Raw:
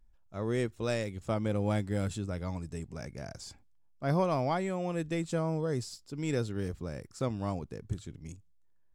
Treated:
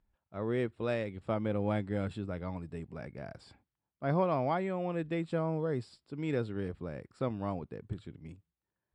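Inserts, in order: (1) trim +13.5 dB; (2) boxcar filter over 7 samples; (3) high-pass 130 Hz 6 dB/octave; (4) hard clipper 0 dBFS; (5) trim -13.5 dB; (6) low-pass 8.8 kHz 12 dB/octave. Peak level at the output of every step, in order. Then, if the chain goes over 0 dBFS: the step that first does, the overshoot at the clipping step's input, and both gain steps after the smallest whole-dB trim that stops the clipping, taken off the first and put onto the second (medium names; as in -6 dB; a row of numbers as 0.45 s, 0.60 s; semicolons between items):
-3.5 dBFS, -3.5 dBFS, -5.0 dBFS, -5.0 dBFS, -18.5 dBFS, -18.5 dBFS; nothing clips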